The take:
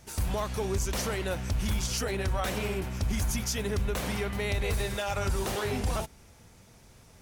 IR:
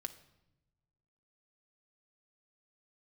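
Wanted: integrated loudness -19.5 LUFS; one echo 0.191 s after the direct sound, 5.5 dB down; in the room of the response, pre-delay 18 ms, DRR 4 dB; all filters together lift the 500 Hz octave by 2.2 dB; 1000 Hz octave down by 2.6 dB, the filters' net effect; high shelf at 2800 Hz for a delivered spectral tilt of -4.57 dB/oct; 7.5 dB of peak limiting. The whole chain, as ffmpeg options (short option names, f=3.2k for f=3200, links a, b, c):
-filter_complex "[0:a]equalizer=f=500:t=o:g=4,equalizer=f=1k:t=o:g=-5.5,highshelf=f=2.8k:g=3.5,alimiter=level_in=1dB:limit=-24dB:level=0:latency=1,volume=-1dB,aecho=1:1:191:0.531,asplit=2[a][b];[1:a]atrim=start_sample=2205,adelay=18[c];[b][c]afir=irnorm=-1:irlink=0,volume=-1.5dB[d];[a][d]amix=inputs=2:normalize=0,volume=10.5dB"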